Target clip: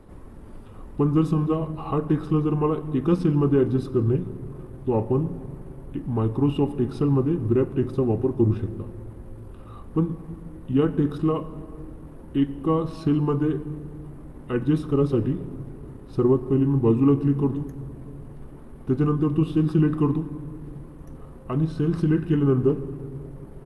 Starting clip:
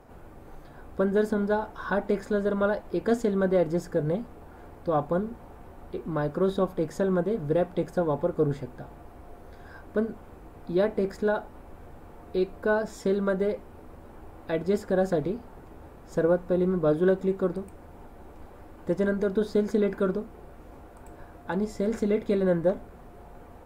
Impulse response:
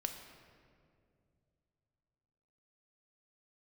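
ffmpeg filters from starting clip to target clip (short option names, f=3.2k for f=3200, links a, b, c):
-filter_complex "[0:a]asetrate=33038,aresample=44100,atempo=1.33484,equalizer=f=100:t=o:w=0.67:g=3,equalizer=f=630:t=o:w=0.67:g=-8,equalizer=f=6.3k:t=o:w=0.67:g=-9,asplit=2[a][b];[1:a]atrim=start_sample=2205,lowshelf=f=150:g=3[c];[b][c]afir=irnorm=-1:irlink=0,volume=-2dB[d];[a][d]amix=inputs=2:normalize=0" -ar 48000 -c:a libopus -b:a 48k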